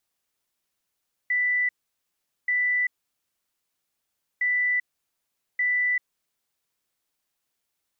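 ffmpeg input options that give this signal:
ffmpeg -f lavfi -i "aevalsrc='0.0944*sin(2*PI*1980*t)*clip(min(mod(mod(t,3.11),1.18),0.39-mod(mod(t,3.11),1.18))/0.005,0,1)*lt(mod(t,3.11),2.36)':duration=6.22:sample_rate=44100" out.wav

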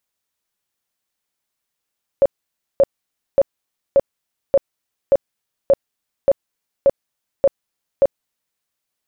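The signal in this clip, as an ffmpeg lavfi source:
ffmpeg -f lavfi -i "aevalsrc='0.398*sin(2*PI*553*mod(t,0.58))*lt(mod(t,0.58),20/553)':duration=6.38:sample_rate=44100" out.wav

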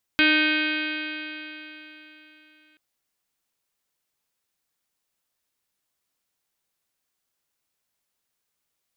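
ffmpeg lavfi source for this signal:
ffmpeg -f lavfi -i "aevalsrc='0.0891*pow(10,-3*t/3.58)*sin(2*PI*305.15*t)+0.0224*pow(10,-3*t/3.58)*sin(2*PI*611.19*t)+0.0106*pow(10,-3*t/3.58)*sin(2*PI*919.03*t)+0.0168*pow(10,-3*t/3.58)*sin(2*PI*1229.53*t)+0.1*pow(10,-3*t/3.58)*sin(2*PI*1543.57*t)+0.0355*pow(10,-3*t/3.58)*sin(2*PI*1862*t)+0.0596*pow(10,-3*t/3.58)*sin(2*PI*2185.66*t)+0.0944*pow(10,-3*t/3.58)*sin(2*PI*2515.35*t)+0.0316*pow(10,-3*t/3.58)*sin(2*PI*2851.87*t)+0.0562*pow(10,-3*t/3.58)*sin(2*PI*3195.96*t)+0.0224*pow(10,-3*t/3.58)*sin(2*PI*3548.35*t)+0.0282*pow(10,-3*t/3.58)*sin(2*PI*3909.73*t)+0.0106*pow(10,-3*t/3.58)*sin(2*PI*4280.77*t)+0.0158*pow(10,-3*t/3.58)*sin(2*PI*4662.09*t)':duration=2.58:sample_rate=44100" out.wav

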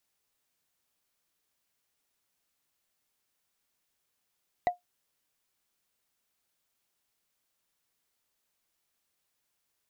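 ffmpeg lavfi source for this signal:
ffmpeg -f lavfi -i "aevalsrc='0.126*pow(10,-3*t/0.14)*sin(2*PI*712*t)+0.0376*pow(10,-3*t/0.041)*sin(2*PI*1963*t)+0.0112*pow(10,-3*t/0.018)*sin(2*PI*3847.6*t)+0.00335*pow(10,-3*t/0.01)*sin(2*PI*6360.3*t)+0.001*pow(10,-3*t/0.006)*sin(2*PI*9498.1*t)':duration=0.45:sample_rate=44100" out.wav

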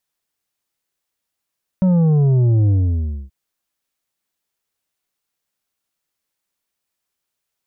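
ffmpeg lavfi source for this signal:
ffmpeg -f lavfi -i "aevalsrc='0.251*clip((1.48-t)/0.61,0,1)*tanh(2.24*sin(2*PI*190*1.48/log(65/190)*(exp(log(65/190)*t/1.48)-1)))/tanh(2.24)':duration=1.48:sample_rate=44100" out.wav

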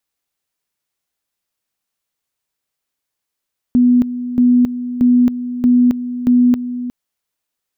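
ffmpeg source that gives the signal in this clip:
ffmpeg -f lavfi -i "aevalsrc='pow(10,(-7.5-12.5*gte(mod(t,0.63),0.27))/20)*sin(2*PI*246*t)':duration=3.15:sample_rate=44100" out.wav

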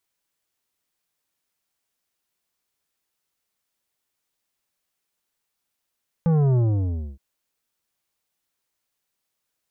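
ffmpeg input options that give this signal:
ffmpeg -f lavfi -i "aevalsrc='0.141*clip((0.92-t)/0.62,0,1)*tanh(3.35*sin(2*PI*170*0.92/log(65/170)*(exp(log(65/170)*t/0.92)-1)))/tanh(3.35)':duration=0.92:sample_rate=44100" out.wav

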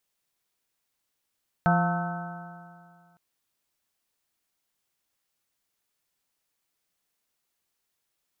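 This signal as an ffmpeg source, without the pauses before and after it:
ffmpeg -f lavfi -i "aevalsrc='0.1*pow(10,-3*t/2.14)*sin(2*PI*170.34*t)+0.0141*pow(10,-3*t/2.14)*sin(2*PI*342.71*t)+0.0133*pow(10,-3*t/2.14)*sin(2*PI*519.1*t)+0.075*pow(10,-3*t/2.14)*sin(2*PI*701.42*t)+0.0422*pow(10,-3*t/2.14)*sin(2*PI*891.49*t)+0.0126*pow(10,-3*t/2.14)*sin(2*PI*1090.97*t)+0.0447*pow(10,-3*t/2.14)*sin(2*PI*1301.41*t)+0.0398*pow(10,-3*t/2.14)*sin(2*PI*1524.17*t)':duration=1.51:sample_rate=44100" out.wav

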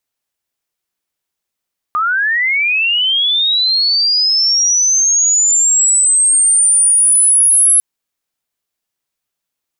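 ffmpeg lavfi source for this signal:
ffmpeg -f lavfi -i "aevalsrc='pow(10,(-12+5.5*t/5.85)/20)*sin(2*PI*(1200*t+9800*t*t/(2*5.85)))':duration=5.85:sample_rate=44100" out.wav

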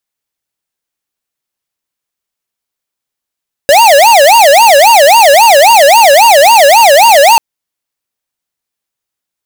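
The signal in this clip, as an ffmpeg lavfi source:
ffmpeg -f lavfi -i "aevalsrc='0.668*(2*lt(mod((746*t-194/(2*PI*3.7)*sin(2*PI*3.7*t)),1),0.5)-1)':duration=3.69:sample_rate=44100" out.wav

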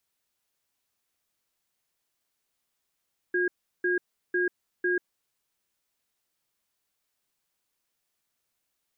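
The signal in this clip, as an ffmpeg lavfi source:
ffmpeg -f lavfi -i "aevalsrc='0.0531*(sin(2*PI*358*t)+sin(2*PI*1630*t))*clip(min(mod(t,0.5),0.14-mod(t,0.5))/0.005,0,1)':duration=1.67:sample_rate=44100" out.wav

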